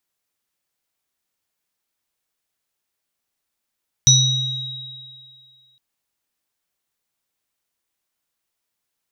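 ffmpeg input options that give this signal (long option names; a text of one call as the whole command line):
ffmpeg -f lavfi -i "aevalsrc='0.224*pow(10,-3*t/1.71)*sin(2*PI*130*t)+0.224*pow(10,-3*t/2.36)*sin(2*PI*3820*t)+0.398*pow(10,-3*t/0.59)*sin(2*PI*5900*t)':duration=1.71:sample_rate=44100" out.wav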